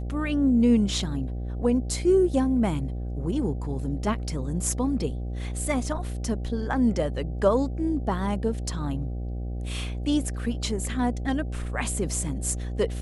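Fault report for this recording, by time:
mains buzz 60 Hz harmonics 13 −31 dBFS

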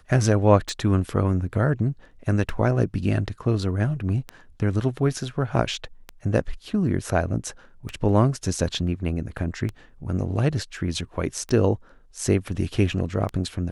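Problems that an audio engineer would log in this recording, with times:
scratch tick 33 1/3 rpm

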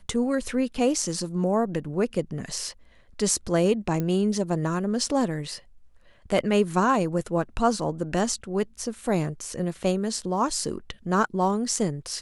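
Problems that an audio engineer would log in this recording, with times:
0:04.00: click −16 dBFS

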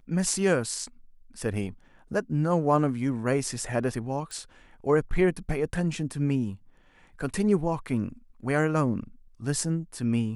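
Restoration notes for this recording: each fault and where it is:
0:04.31: click

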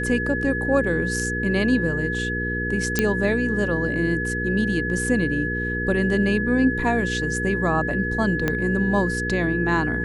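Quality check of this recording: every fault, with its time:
mains hum 60 Hz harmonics 8 −28 dBFS
whistle 1,700 Hz −26 dBFS
0:02.99: click −4 dBFS
0:08.48: click −9 dBFS

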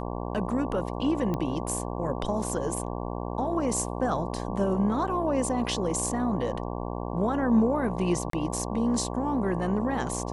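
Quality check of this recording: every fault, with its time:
mains buzz 60 Hz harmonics 19 −33 dBFS
0:01.34: click −18 dBFS
0:08.30–0:08.33: drop-out 33 ms

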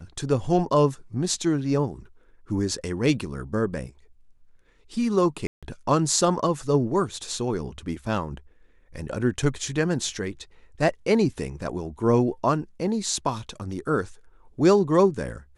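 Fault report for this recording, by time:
0:05.47–0:05.63: drop-out 156 ms

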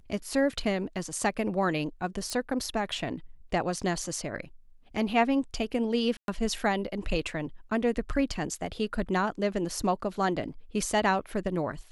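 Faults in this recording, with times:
0:02.30: click −20 dBFS
0:06.17–0:06.28: drop-out 112 ms

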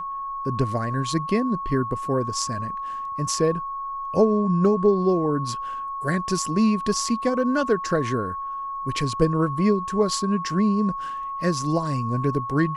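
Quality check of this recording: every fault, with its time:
whistle 1,100 Hz −28 dBFS

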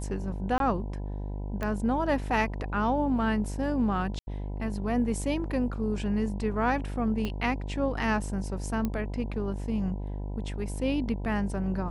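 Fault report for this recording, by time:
mains buzz 50 Hz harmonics 20 −34 dBFS
0:00.58–0:00.60: drop-out 22 ms
0:01.63: click −19 dBFS
0:04.19–0:04.27: drop-out 81 ms
0:07.25: click −19 dBFS
0:08.85: click −17 dBFS

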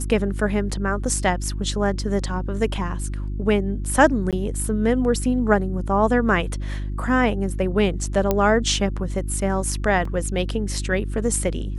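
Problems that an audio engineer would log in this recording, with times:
mains hum 50 Hz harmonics 7 −27 dBFS
0:04.31–0:04.33: drop-out 17 ms
0:08.31: click −6 dBFS
0:10.05: drop-out 3.7 ms

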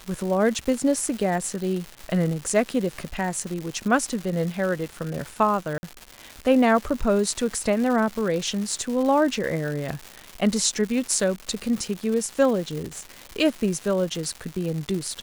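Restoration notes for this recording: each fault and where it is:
surface crackle 320 per second −29 dBFS
0:05.78–0:05.83: drop-out 50 ms

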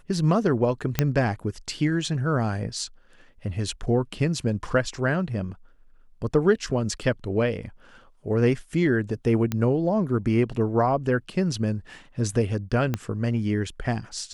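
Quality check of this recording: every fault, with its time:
0:00.99: click −6 dBFS
0:09.52: click −12 dBFS
0:12.94: click −12 dBFS

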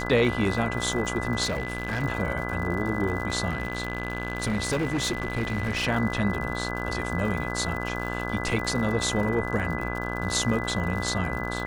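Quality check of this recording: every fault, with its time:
mains buzz 60 Hz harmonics 28 −32 dBFS
surface crackle 94 per second −33 dBFS
whistle 2,000 Hz −34 dBFS
0:01.44–0:02.04: clipping −24 dBFS
0:03.49–0:05.87: clipping −22.5 dBFS

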